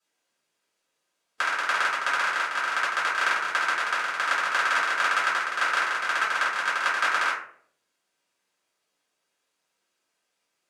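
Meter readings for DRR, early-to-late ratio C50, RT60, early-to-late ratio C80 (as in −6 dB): −10.0 dB, 4.0 dB, 0.55 s, 8.5 dB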